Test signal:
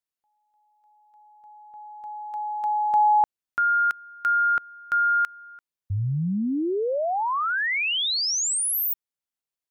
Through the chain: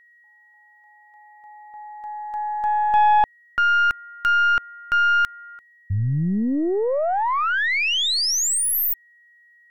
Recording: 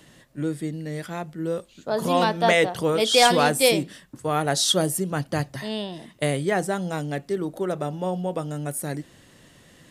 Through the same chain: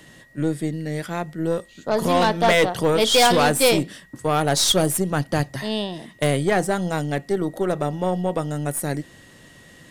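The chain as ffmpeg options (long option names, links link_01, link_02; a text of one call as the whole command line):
ffmpeg -i in.wav -af "aeval=exprs='0.422*(cos(1*acos(clip(val(0)/0.422,-1,1)))-cos(1*PI/2))+0.0266*(cos(4*acos(clip(val(0)/0.422,-1,1)))-cos(4*PI/2))+0.0668*(cos(5*acos(clip(val(0)/0.422,-1,1)))-cos(5*PI/2))+0.0168*(cos(7*acos(clip(val(0)/0.422,-1,1)))-cos(7*PI/2))+0.0188*(cos(8*acos(clip(val(0)/0.422,-1,1)))-cos(8*PI/2))':channel_layout=same,aeval=exprs='val(0)+0.00251*sin(2*PI*1900*n/s)':channel_layout=same" out.wav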